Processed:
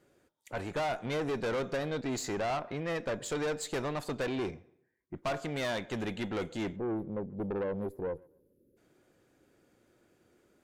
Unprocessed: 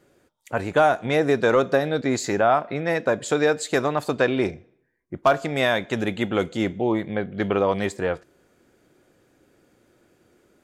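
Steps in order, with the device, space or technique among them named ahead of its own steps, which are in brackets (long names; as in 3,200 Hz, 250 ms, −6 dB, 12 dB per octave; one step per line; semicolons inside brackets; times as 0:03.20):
gain on a spectral selection 0:06.76–0:08.77, 590–9,800 Hz −28 dB
rockabilly slapback (tube saturation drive 23 dB, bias 0.35; tape delay 136 ms, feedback 30%, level −23 dB, low-pass 1,200 Hz)
level −6 dB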